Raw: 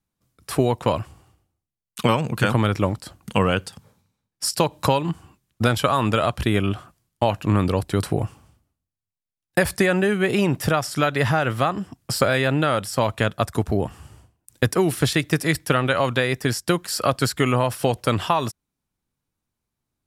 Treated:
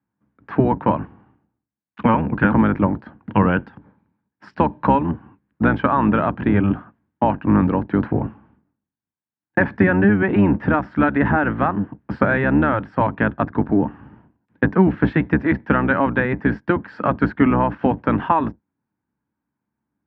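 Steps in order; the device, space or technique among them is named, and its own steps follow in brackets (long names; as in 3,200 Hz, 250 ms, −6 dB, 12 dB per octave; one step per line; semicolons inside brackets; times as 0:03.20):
sub-octave bass pedal (sub-octave generator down 1 octave, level +3 dB; loudspeaker in its box 80–2,200 Hz, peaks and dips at 86 Hz −6 dB, 210 Hz +8 dB, 290 Hz +9 dB, 910 Hz +9 dB, 1,600 Hz +8 dB)
level −2 dB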